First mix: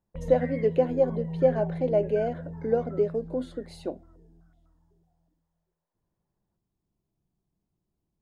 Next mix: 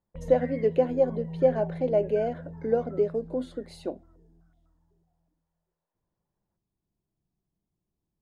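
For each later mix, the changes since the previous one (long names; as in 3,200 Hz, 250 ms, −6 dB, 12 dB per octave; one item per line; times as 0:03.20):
background −3.0 dB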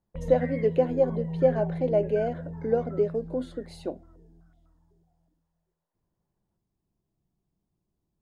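background +4.0 dB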